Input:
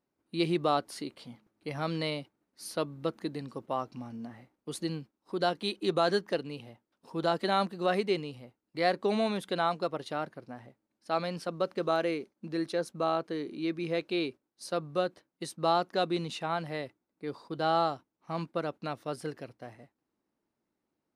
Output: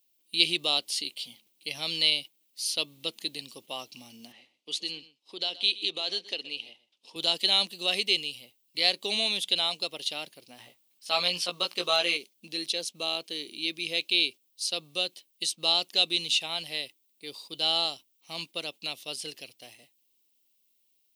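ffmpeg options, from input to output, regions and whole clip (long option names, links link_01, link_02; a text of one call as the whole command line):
ffmpeg -i in.wav -filter_complex "[0:a]asettb=1/sr,asplit=3[link_01][link_02][link_03];[link_01]atrim=end=4.324[link_04];[link_02]atrim=start=4.32:end=7.16,asetpts=PTS-STARTPTS,afade=type=in:duration=0.004:curve=qsin,afade=type=out:start_time=2.836:duration=0.004:curve=qsin,acompressor=threshold=-30dB:ratio=2.5:attack=3.2:release=140:knee=1:detection=peak,highpass=230,lowpass=4600,aecho=1:1:125:0.133,atrim=end_sample=125244[link_05];[link_03]atrim=start=7.156[link_06];[link_04][link_05]acrossfade=duration=0.004:curve1=hsin:curve2=qsin[link_07];[link_07][link_06]acrossfade=duration=0.004:curve1=qsin:curve2=hsin,asettb=1/sr,asplit=3[link_08][link_09][link_10];[link_08]atrim=end=10.584[link_11];[link_09]atrim=start=10.58:end=12.17,asetpts=PTS-STARTPTS,afade=type=in:duration=0.004:curve=qsin,afade=type=out:start_time=1.586:duration=0.004:curve=qsin,equalizer=frequency=1200:width=1.2:gain=10,asplit=2[link_12][link_13];[link_13]adelay=17,volume=-3.5dB[link_14];[link_12][link_14]amix=inputs=2:normalize=0,atrim=end_sample=70119[link_15];[link_10]atrim=start=12.166[link_16];[link_11][link_15]acrossfade=duration=0.004:curve1=hsin:curve2=qsin[link_17];[link_17][link_16]acrossfade=duration=0.004:curve1=qsin:curve2=hsin,aemphasis=mode=production:type=bsi,acrossover=split=8100[link_18][link_19];[link_19]acompressor=threshold=-57dB:ratio=4:attack=1:release=60[link_20];[link_18][link_20]amix=inputs=2:normalize=0,highshelf=frequency=2100:width_type=q:width=3:gain=12,volume=-5dB" out.wav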